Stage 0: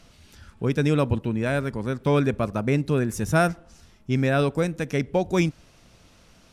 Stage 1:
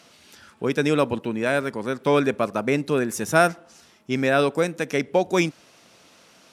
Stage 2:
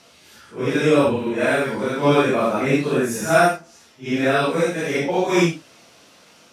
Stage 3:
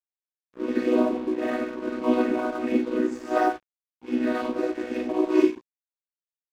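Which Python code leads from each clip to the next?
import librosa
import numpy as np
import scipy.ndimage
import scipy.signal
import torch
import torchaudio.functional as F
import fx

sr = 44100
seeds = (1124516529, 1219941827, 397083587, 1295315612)

y1 = scipy.signal.sosfilt(scipy.signal.bessel(2, 320.0, 'highpass', norm='mag', fs=sr, output='sos'), x)
y1 = F.gain(torch.from_numpy(y1), 4.5).numpy()
y2 = fx.phase_scramble(y1, sr, seeds[0], window_ms=200)
y2 = fx.rider(y2, sr, range_db=10, speed_s=2.0)
y2 = F.gain(torch.from_numpy(y2), 4.0).numpy()
y3 = fx.chord_vocoder(y2, sr, chord='major triad', root=59)
y3 = np.sign(y3) * np.maximum(np.abs(y3) - 10.0 ** (-38.5 / 20.0), 0.0)
y3 = F.gain(torch.from_numpy(y3), -4.0).numpy()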